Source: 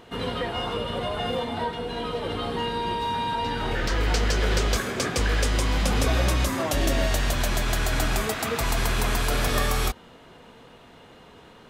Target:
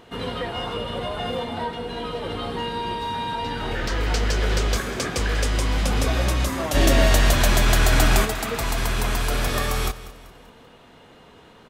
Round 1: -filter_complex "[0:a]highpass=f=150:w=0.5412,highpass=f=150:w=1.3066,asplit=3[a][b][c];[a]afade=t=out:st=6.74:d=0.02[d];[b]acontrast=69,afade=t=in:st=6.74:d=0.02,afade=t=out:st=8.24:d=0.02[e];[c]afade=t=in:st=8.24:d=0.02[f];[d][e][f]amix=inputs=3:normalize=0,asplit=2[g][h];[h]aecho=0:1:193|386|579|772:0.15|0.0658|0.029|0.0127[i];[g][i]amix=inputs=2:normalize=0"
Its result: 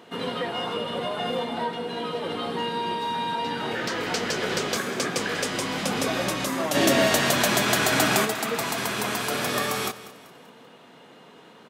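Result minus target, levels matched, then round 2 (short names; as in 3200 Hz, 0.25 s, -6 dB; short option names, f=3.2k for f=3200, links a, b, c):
125 Hz band -9.0 dB
-filter_complex "[0:a]asplit=3[a][b][c];[a]afade=t=out:st=6.74:d=0.02[d];[b]acontrast=69,afade=t=in:st=6.74:d=0.02,afade=t=out:st=8.24:d=0.02[e];[c]afade=t=in:st=8.24:d=0.02[f];[d][e][f]amix=inputs=3:normalize=0,asplit=2[g][h];[h]aecho=0:1:193|386|579|772:0.15|0.0658|0.029|0.0127[i];[g][i]amix=inputs=2:normalize=0"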